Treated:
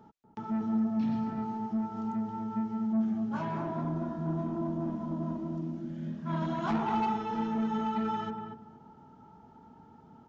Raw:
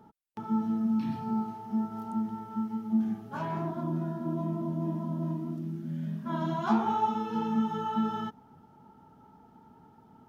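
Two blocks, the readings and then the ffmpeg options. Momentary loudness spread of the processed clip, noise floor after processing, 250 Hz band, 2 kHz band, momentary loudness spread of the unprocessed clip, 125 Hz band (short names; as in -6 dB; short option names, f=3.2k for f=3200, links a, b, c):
8 LU, -56 dBFS, -1.0 dB, +0.5 dB, 7 LU, -2.0 dB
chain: -filter_complex "[0:a]aresample=16000,asoftclip=type=tanh:threshold=-26dB,aresample=44100,asplit=2[a][b];[b]adelay=239,lowpass=f=980:p=1,volume=-3dB,asplit=2[c][d];[d]adelay=239,lowpass=f=980:p=1,volume=0.26,asplit=2[e][f];[f]adelay=239,lowpass=f=980:p=1,volume=0.26,asplit=2[g][h];[h]adelay=239,lowpass=f=980:p=1,volume=0.26[i];[a][c][e][g][i]amix=inputs=5:normalize=0"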